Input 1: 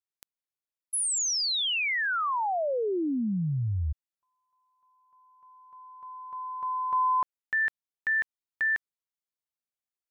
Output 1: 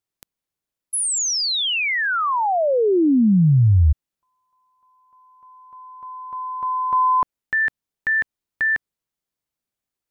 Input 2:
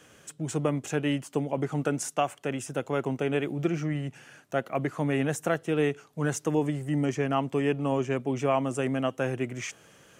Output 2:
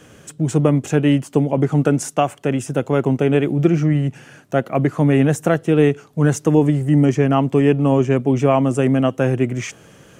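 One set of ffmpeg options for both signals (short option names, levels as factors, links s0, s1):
-af "lowshelf=f=470:g=9,volume=2"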